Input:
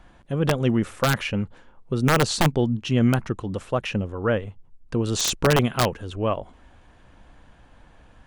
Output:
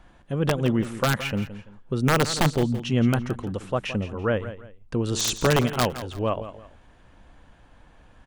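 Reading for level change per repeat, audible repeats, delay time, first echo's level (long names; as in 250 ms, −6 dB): −10.0 dB, 2, 168 ms, −13.0 dB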